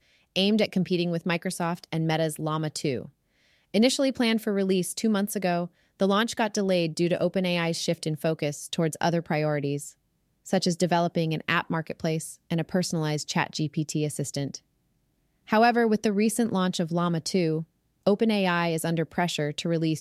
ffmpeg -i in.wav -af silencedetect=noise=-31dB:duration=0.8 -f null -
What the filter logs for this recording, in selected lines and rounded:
silence_start: 14.55
silence_end: 15.50 | silence_duration: 0.94